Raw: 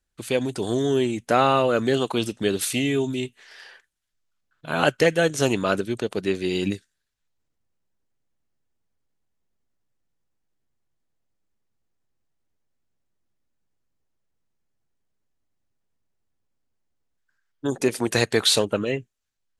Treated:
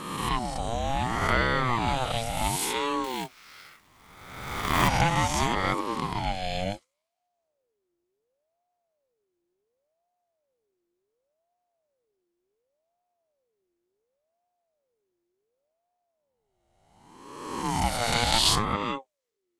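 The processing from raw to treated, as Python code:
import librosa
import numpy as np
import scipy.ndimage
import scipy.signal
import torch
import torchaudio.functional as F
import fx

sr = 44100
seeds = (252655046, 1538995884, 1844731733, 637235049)

y = fx.spec_swells(x, sr, rise_s=1.36)
y = fx.quant_companded(y, sr, bits=4, at=(3.04, 4.88))
y = fx.ring_lfo(y, sr, carrier_hz=530.0, swing_pct=35, hz=0.69)
y = y * librosa.db_to_amplitude(-4.0)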